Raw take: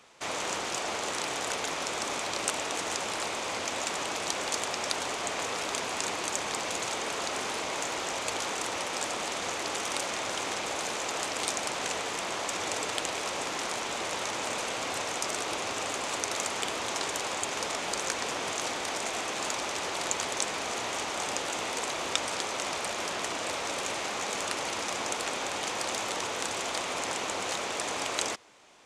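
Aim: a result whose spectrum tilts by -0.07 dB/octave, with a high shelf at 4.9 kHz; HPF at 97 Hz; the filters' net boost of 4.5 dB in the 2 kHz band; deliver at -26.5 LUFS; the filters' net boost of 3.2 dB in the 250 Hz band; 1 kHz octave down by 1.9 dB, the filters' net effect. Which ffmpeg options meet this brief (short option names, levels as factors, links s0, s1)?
-af "highpass=97,equalizer=f=250:t=o:g=4.5,equalizer=f=1000:t=o:g=-4.5,equalizer=f=2000:t=o:g=5.5,highshelf=f=4900:g=6.5,volume=1.19"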